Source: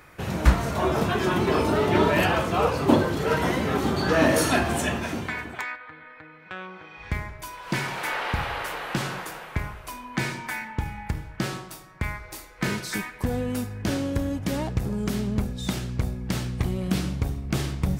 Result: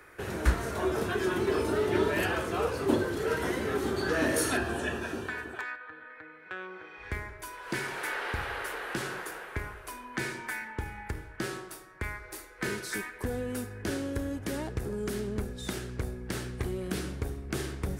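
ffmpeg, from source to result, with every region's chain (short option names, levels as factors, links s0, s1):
-filter_complex "[0:a]asettb=1/sr,asplit=3[s0][s1][s2];[s0]atrim=end=4.574[s3];[s1]atrim=start=4.57:end=6.1,asetpts=PTS-STARTPTS,afade=t=in:d=0.004:c=qsin,afade=t=out:st=1.526:d=0.004:c=qsin,acrossover=split=4500[s4][s5];[s5]acompressor=threshold=0.00447:ratio=4:attack=1:release=60[s6];[s4][s6]amix=inputs=2:normalize=0,asuperstop=centerf=2100:order=4:qfactor=6.6[s7];[s2]atrim=start=6.096[s8];[s3][s7]acrossfade=d=0.004:c1=hsin:c2=qsin[s9];[s9][s8]acrossfade=d=0.004:c1=qsin:c2=hsin,equalizer=f=160:t=o:w=0.67:g=-7,equalizer=f=400:t=o:w=0.67:g=10,equalizer=f=1600:t=o:w=0.67:g=8,equalizer=f=10000:t=o:w=0.67:g=6,acrossover=split=250|3000[s10][s11][s12];[s11]acompressor=threshold=0.0282:ratio=1.5[s13];[s10][s13][s12]amix=inputs=3:normalize=0,volume=0.447"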